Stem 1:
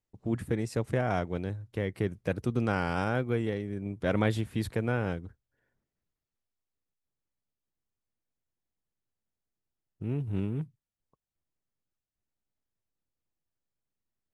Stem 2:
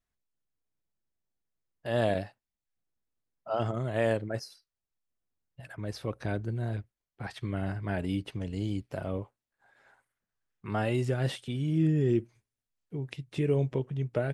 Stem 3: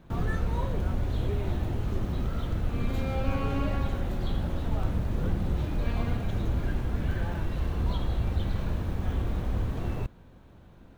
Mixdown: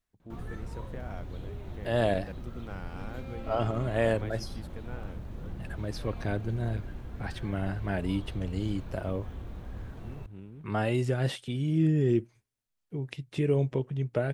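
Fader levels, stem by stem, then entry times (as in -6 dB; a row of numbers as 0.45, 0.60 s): -14.5, +1.0, -11.5 dB; 0.00, 0.00, 0.20 s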